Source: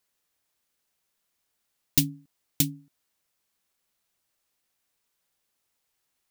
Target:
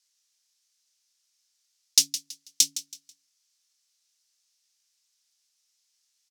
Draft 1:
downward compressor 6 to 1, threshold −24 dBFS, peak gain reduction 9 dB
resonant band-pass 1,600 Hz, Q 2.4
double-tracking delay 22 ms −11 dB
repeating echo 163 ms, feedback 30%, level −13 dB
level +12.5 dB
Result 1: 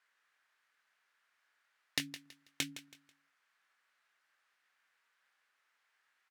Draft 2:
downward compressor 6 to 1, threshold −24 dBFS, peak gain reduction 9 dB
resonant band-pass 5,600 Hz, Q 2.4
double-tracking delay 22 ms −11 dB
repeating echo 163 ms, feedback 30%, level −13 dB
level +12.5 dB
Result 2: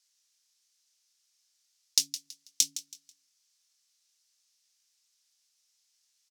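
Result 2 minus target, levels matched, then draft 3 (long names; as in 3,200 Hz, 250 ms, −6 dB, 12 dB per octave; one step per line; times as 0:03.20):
downward compressor: peak gain reduction +9 dB
resonant band-pass 5,600 Hz, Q 2.4
double-tracking delay 22 ms −11 dB
repeating echo 163 ms, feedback 30%, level −13 dB
level +12.5 dB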